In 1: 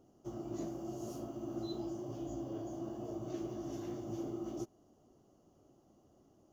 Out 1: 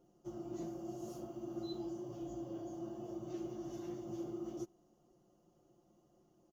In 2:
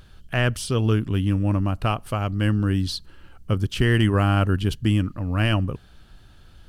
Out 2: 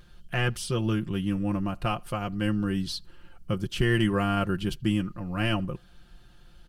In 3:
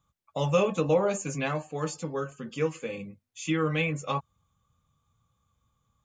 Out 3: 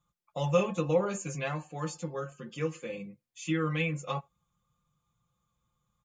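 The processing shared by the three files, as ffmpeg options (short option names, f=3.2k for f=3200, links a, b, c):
-filter_complex "[0:a]aecho=1:1:5.7:0.69,asplit=2[a][b];[b]adelay=80,highpass=300,lowpass=3.4k,asoftclip=type=hard:threshold=-16dB,volume=-29dB[c];[a][c]amix=inputs=2:normalize=0,volume=-5.5dB"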